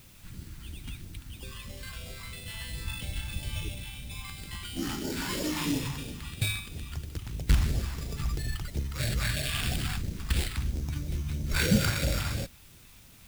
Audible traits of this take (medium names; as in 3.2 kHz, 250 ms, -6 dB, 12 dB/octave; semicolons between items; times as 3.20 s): aliases and images of a low sample rate 6.1 kHz, jitter 0%; phasing stages 2, 3 Hz, lowest notch 490–1100 Hz; a quantiser's noise floor 10-bit, dither triangular